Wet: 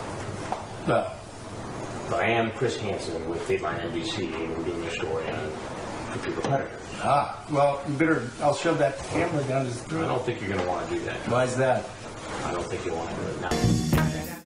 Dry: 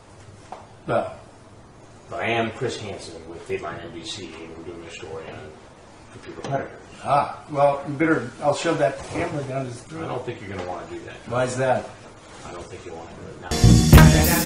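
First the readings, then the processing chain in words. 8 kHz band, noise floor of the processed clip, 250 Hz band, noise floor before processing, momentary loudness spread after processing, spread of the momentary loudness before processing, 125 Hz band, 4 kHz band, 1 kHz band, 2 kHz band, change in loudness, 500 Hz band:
-8.0 dB, -39 dBFS, -4.5 dB, -47 dBFS, 10 LU, 21 LU, -8.5 dB, -4.5 dB, -1.5 dB, -2.5 dB, -6.0 dB, -1.0 dB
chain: ending faded out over 1.31 s; three-band squash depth 70%

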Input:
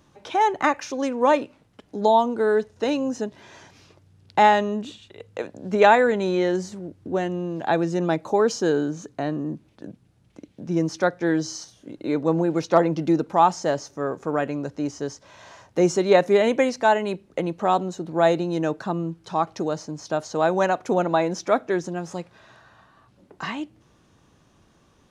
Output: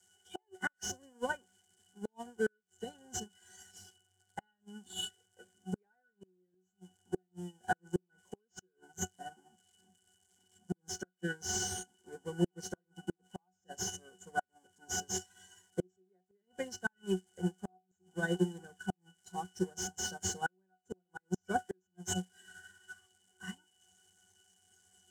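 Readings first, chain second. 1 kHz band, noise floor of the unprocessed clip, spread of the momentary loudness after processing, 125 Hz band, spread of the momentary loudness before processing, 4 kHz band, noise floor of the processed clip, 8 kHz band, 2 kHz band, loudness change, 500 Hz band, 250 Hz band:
-21.0 dB, -60 dBFS, 18 LU, -12.5 dB, 15 LU, -8.5 dB, -82 dBFS, -1.0 dB, -12.5 dB, -17.0 dB, -21.0 dB, -16.5 dB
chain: switching spikes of -12.5 dBFS; weighting filter D; spectral noise reduction 11 dB; resonant high shelf 5500 Hz +14 dB, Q 3; sample leveller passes 2; octave resonator F#, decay 0.22 s; flipped gate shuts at -23 dBFS, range -30 dB; upward expander 2.5:1, over -47 dBFS; gain +6.5 dB

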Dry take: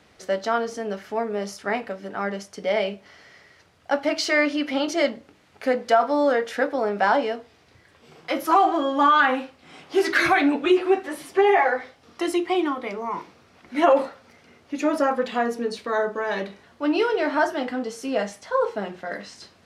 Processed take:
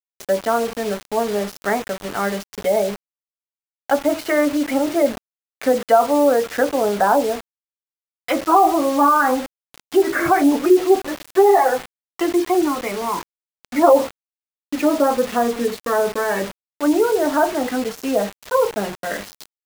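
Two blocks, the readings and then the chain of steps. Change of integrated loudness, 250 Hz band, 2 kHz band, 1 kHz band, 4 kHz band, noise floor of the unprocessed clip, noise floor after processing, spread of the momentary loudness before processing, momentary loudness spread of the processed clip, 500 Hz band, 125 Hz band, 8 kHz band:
+4.5 dB, +5.5 dB, -1.0 dB, +4.0 dB, 0.0 dB, -57 dBFS, under -85 dBFS, 13 LU, 11 LU, +5.5 dB, n/a, +8.5 dB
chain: treble ducked by the level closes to 1100 Hz, closed at -19.5 dBFS; spectral gate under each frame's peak -30 dB strong; bit-crush 6-bit; gain +5.5 dB

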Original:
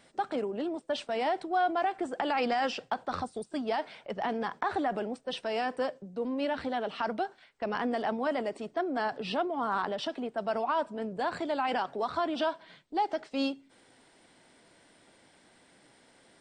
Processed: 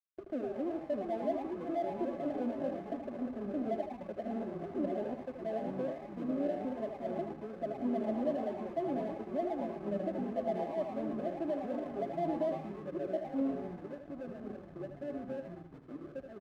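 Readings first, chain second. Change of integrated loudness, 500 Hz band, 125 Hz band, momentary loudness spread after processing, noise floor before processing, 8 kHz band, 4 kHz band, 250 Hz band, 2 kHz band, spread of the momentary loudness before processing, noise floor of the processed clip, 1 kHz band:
-5.0 dB, -2.5 dB, +3.5 dB, 9 LU, -62 dBFS, n/a, under -20 dB, -0.5 dB, -16.5 dB, 6 LU, -51 dBFS, -11.0 dB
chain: FFT band-pass 210–700 Hz; frequency-shifting echo 0.111 s, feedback 49%, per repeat +150 Hz, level -10.5 dB; echoes that change speed 0.537 s, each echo -3 st, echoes 3, each echo -6 dB; backlash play -38.5 dBFS; notch comb 470 Hz; on a send: echo 78 ms -8 dB; on the sum: gain -2 dB

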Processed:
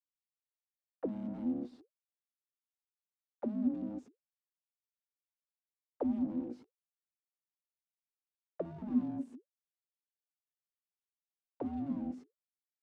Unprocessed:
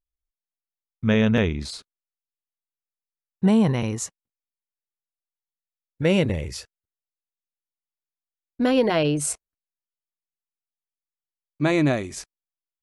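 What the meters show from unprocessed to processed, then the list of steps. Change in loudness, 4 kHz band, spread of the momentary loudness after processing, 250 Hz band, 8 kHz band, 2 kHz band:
-15.5 dB, under -35 dB, 13 LU, -12.5 dB, under -40 dB, under -35 dB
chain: fuzz box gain 44 dB, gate -45 dBFS; small resonant body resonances 350/3200 Hz, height 8 dB; ring modulator 420 Hz; auto-wah 250–1600 Hz, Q 21, down, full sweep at -15.5 dBFS; gain -1 dB

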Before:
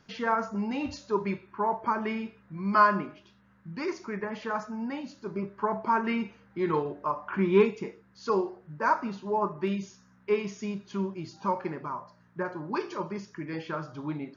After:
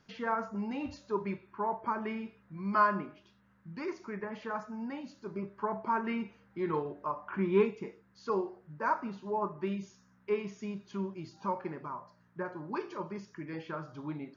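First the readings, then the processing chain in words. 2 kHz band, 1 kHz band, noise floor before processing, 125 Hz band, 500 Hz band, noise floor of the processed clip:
-6.0 dB, -5.5 dB, -61 dBFS, -5.0 dB, -5.0 dB, -66 dBFS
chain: dynamic EQ 5900 Hz, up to -6 dB, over -52 dBFS, Q 0.72; gain -5 dB

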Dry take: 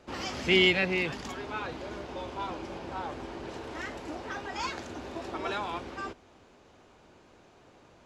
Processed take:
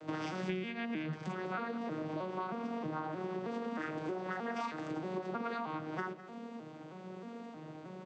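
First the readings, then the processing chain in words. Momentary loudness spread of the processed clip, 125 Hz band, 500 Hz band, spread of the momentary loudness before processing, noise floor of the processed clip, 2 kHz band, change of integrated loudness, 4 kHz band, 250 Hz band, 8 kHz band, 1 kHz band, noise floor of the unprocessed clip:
10 LU, -2.5 dB, -6.0 dB, 17 LU, -50 dBFS, -11.5 dB, -8.0 dB, -19.0 dB, -2.5 dB, under -10 dB, -3.0 dB, -58 dBFS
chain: arpeggiated vocoder minor triad, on D#3, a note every 0.314 s; dynamic EQ 1400 Hz, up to +6 dB, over -53 dBFS, Q 1.8; compressor 20:1, threshold -46 dBFS, peak gain reduction 29.5 dB; echo 0.207 s -16 dB; gain +11.5 dB

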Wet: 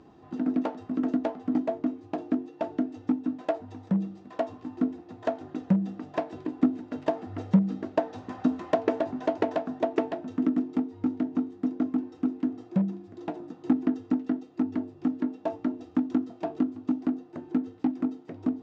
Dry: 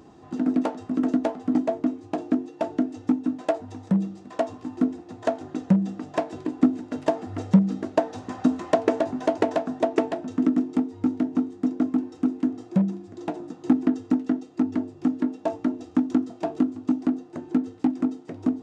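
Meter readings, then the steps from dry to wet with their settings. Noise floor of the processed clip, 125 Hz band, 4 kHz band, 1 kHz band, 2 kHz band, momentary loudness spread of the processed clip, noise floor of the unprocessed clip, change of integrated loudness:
-52 dBFS, -4.0 dB, n/a, -4.0 dB, -4.0 dB, 7 LU, -48 dBFS, -4.0 dB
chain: LPF 4400 Hz 12 dB/oct; gain -4 dB

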